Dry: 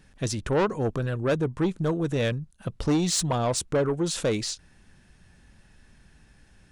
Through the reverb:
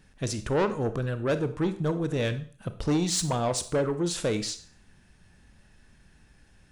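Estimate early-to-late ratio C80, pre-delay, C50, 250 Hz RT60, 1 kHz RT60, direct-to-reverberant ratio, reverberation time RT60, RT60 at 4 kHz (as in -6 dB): 17.5 dB, 26 ms, 13.5 dB, 0.45 s, 0.45 s, 10.5 dB, 0.45 s, 0.45 s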